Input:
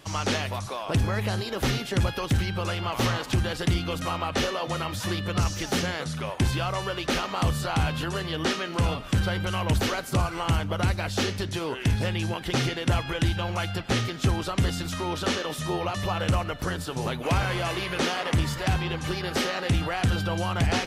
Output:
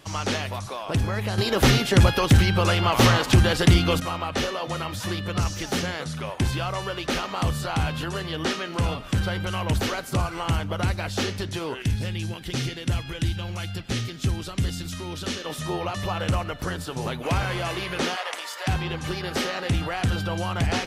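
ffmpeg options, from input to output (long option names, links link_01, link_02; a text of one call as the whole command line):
ffmpeg -i in.wav -filter_complex "[0:a]asettb=1/sr,asplit=3[link_01][link_02][link_03];[link_01]atrim=end=11.824[link_04];[link_02]atrim=start=11.82:end=15.46,asetpts=PTS-STARTPTS,afade=type=in:duration=0.004:curve=qsin,afade=type=out:start_time=3.636:duration=0.004:curve=qsin,equalizer=frequency=860:width_type=o:width=2.4:gain=-9.5[link_05];[link_03]atrim=start=15.456[link_06];[link_04][link_05]acrossfade=duration=0.004:curve1=hsin:curve2=qsin[link_07];[link_07][link_06]acrossfade=duration=0.004:curve1=qsin:curve2=hsin,asplit=3[link_08][link_09][link_10];[link_08]afade=type=out:start_time=18.15:duration=0.02[link_11];[link_09]highpass=frequency=560:width=0.5412,highpass=frequency=560:width=1.3066,afade=type=in:start_time=18.15:duration=0.02,afade=type=out:start_time=18.66:duration=0.02[link_12];[link_10]afade=type=in:start_time=18.66:duration=0.02[link_13];[link_11][link_12][link_13]amix=inputs=3:normalize=0,asplit=3[link_14][link_15][link_16];[link_14]atrim=end=1.382[link_17];[link_15]atrim=start=1.378:end=4.002,asetpts=PTS-STARTPTS,volume=8dB[link_18];[link_16]atrim=start=3.998[link_19];[link_17][link_18]acrossfade=duration=0.004:curve1=hsin:curve2=hsin[link_20];[link_20][link_19]acrossfade=duration=0.004:curve1=hsin:curve2=hsin" out.wav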